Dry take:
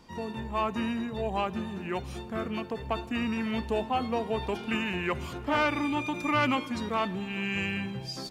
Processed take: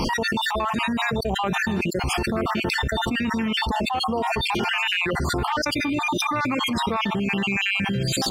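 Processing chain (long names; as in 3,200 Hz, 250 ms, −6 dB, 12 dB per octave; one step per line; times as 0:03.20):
time-frequency cells dropped at random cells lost 47%
envelope flattener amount 100%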